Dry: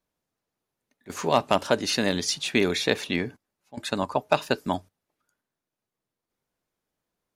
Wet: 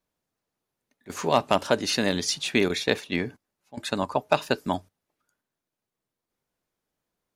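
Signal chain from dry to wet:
0:02.68–0:03.23: noise gate −27 dBFS, range −8 dB

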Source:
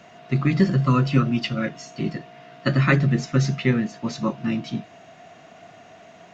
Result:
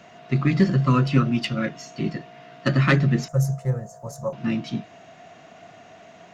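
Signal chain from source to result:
phase distortion by the signal itself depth 0.066 ms
0:03.28–0:04.33: drawn EQ curve 140 Hz 0 dB, 280 Hz −27 dB, 540 Hz +4 dB, 1,600 Hz −14 dB, 2,500 Hz −28 dB, 3,900 Hz −24 dB, 8,600 Hz +12 dB

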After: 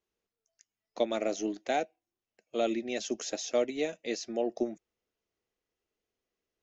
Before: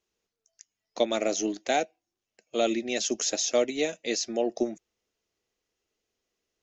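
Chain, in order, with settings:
high-shelf EQ 4,000 Hz −10 dB
level −3.5 dB

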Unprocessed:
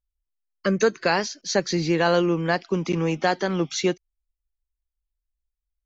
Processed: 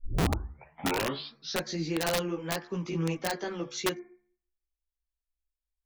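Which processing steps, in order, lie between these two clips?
turntable start at the beginning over 1.69 s
hum removal 71.46 Hz, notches 33
multi-voice chorus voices 4, 1.2 Hz, delay 16 ms, depth 3.2 ms
wrap-around overflow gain 15 dB
level −6 dB

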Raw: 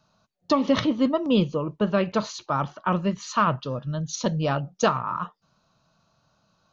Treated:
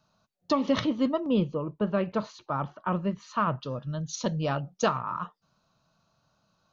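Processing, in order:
0:01.20–0:03.61: low-pass filter 1,800 Hz 6 dB per octave
level −4 dB

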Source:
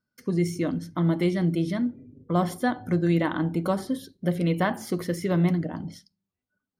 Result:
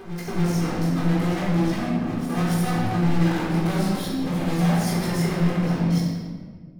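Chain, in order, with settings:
high-shelf EQ 9,800 Hz −4.5 dB
mains-hum notches 50/100/150/200 Hz
leveller curve on the samples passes 5
brickwall limiter −22.5 dBFS, peak gain reduction 10 dB
hard clipping −28.5 dBFS, distortion −14 dB
chorus effect 0.61 Hz, delay 15.5 ms, depth 7.3 ms
on a send: backwards echo 284 ms −10 dB
on the sum: rectangular room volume 1,800 cubic metres, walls mixed, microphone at 3.8 metres

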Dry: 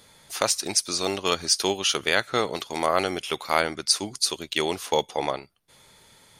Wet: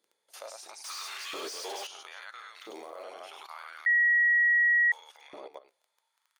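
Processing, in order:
loudspeakers that aren't time-aligned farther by 12 metres −5 dB, 34 metres −3 dB, 94 metres −8 dB
0:02.60–0:03.03: log-companded quantiser 6 bits
output level in coarse steps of 17 dB
surface crackle 16 per second −37 dBFS
flanger 0.37 Hz, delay 5.2 ms, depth 5.2 ms, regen −88%
0:00.84–0:01.87: mid-hump overdrive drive 32 dB, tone 6,900 Hz, clips at −24.5 dBFS
auto-filter high-pass saw up 0.75 Hz 320–1,900 Hz
0:03.86–0:04.92: beep over 1,910 Hz −11.5 dBFS
level −8.5 dB

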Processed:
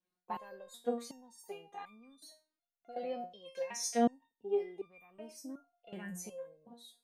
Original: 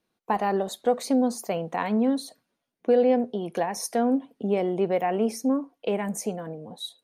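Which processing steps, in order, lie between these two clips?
0:03.31–0:04.12: flat-topped bell 4,000 Hz +11.5 dB 2.3 octaves
step-sequenced resonator 2.7 Hz 180–1,200 Hz

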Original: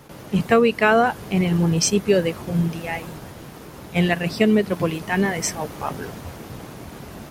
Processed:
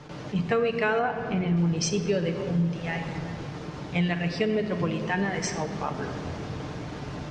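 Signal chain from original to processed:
low-pass filter 6,200 Hz 24 dB per octave
on a send at −5 dB: convolution reverb RT60 1.8 s, pre-delay 7 ms
on the sum: downward compressor 2 to 1, threshold −29 dBFS, peak gain reduction 10.5 dB
0:00.99–0:01.57: high-shelf EQ 4,200 Hz −11.5 dB
level that may rise only so fast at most 350 dB per second

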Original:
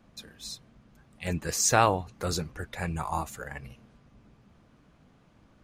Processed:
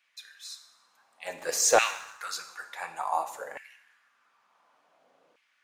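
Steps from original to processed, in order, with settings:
coupled-rooms reverb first 0.87 s, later 2.3 s, DRR 7 dB
auto-filter high-pass saw down 0.56 Hz 470–2,300 Hz
0:01.38–0:02.19: leveller curve on the samples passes 1
level −3.5 dB

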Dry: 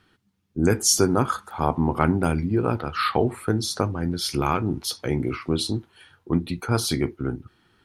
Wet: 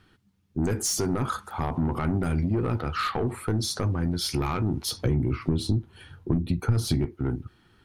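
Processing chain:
brickwall limiter −10.5 dBFS, peak gain reduction 7.5 dB
soft clipping −18.5 dBFS, distortion −12 dB
0:04.92–0:07.05: low-shelf EQ 360 Hz +12 dB
downward compressor 10 to 1, threshold −24 dBFS, peak gain reduction 12 dB
low-shelf EQ 150 Hz +7.5 dB

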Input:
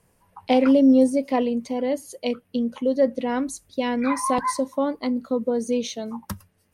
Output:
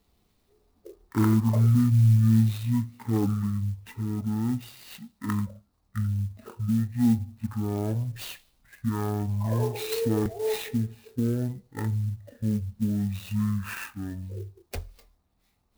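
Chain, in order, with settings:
wrong playback speed 78 rpm record played at 33 rpm
converter with an unsteady clock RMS 0.041 ms
level −4 dB

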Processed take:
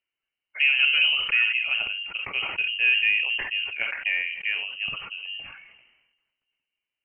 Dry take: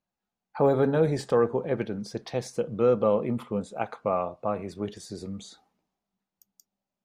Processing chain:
0:00.78–0:01.31: sub-octave generator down 1 octave, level +1 dB
voice inversion scrambler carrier 3,000 Hz
on a send at −20 dB: Chebyshev high-pass filter 480 Hz, order 8 + convolution reverb RT60 0.40 s, pre-delay 6 ms
on the sum: level that may fall only so fast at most 49 dB per second

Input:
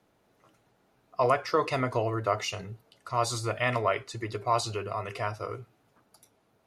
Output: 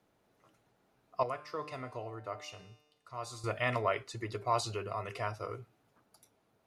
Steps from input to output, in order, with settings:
0:01.23–0:03.44: tuned comb filter 150 Hz, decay 1.1 s, harmonics all, mix 70%
level −4.5 dB

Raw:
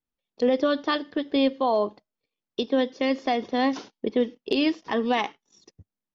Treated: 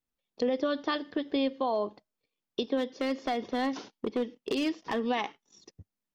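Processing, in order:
downward compressor 2 to 1, threshold −30 dBFS, peak gain reduction 7.5 dB
0:02.77–0:05.06: gain into a clipping stage and back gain 23.5 dB

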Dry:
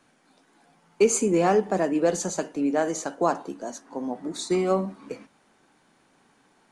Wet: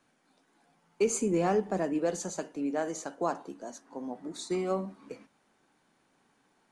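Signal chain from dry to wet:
0:01.07–0:01.99: low-shelf EQ 170 Hz +7.5 dB
level −7.5 dB

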